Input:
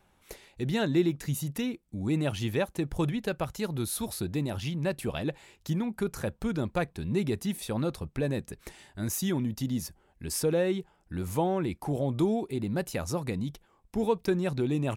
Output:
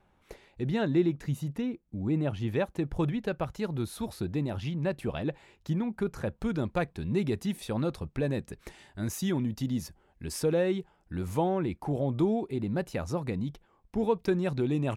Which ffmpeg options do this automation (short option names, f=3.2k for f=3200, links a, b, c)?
-af "asetnsamples=n=441:p=0,asendcmd='1.55 lowpass f 1100;2.48 lowpass f 2300;6.38 lowpass f 4700;11.49 lowpass f 2600;14.19 lowpass f 4500',lowpass=f=1.9k:p=1"